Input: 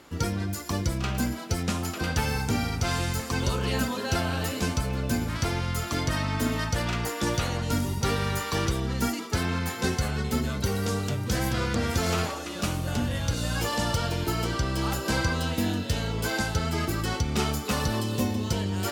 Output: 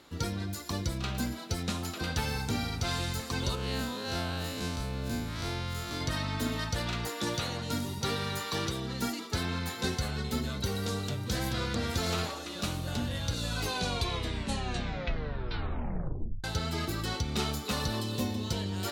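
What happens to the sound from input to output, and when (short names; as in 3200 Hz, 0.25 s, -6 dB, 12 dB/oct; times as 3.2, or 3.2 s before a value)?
3.55–6.01 time blur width 87 ms
7.07–9.26 HPF 100 Hz
13.35 tape stop 3.09 s
whole clip: bell 3900 Hz +8.5 dB 0.35 oct; gain -5.5 dB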